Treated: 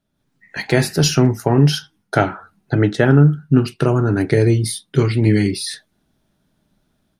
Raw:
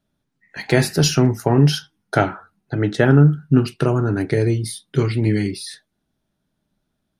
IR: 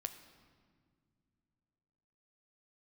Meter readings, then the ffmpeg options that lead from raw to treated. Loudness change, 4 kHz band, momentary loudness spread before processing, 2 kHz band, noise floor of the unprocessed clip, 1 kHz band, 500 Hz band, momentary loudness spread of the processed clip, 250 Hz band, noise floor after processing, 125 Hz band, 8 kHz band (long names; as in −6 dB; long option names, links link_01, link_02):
+1.5 dB, +2.0 dB, 12 LU, +1.5 dB, −75 dBFS, +1.5 dB, +2.0 dB, 11 LU, +2.0 dB, −69 dBFS, +2.0 dB, +2.0 dB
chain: -af "dynaudnorm=framelen=140:gausssize=3:maxgain=9.5dB,volume=-1dB"